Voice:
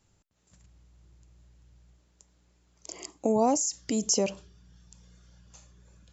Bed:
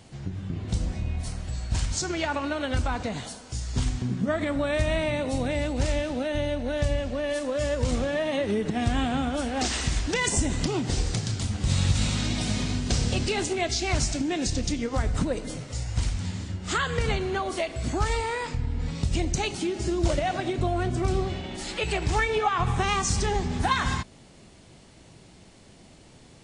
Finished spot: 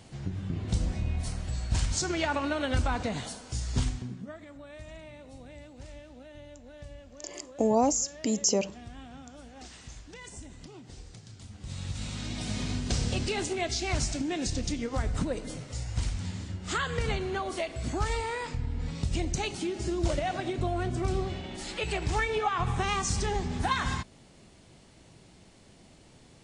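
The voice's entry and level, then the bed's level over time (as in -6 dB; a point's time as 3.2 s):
4.35 s, 0.0 dB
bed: 3.79 s -1 dB
4.43 s -20.5 dB
11.22 s -20.5 dB
12.7 s -4 dB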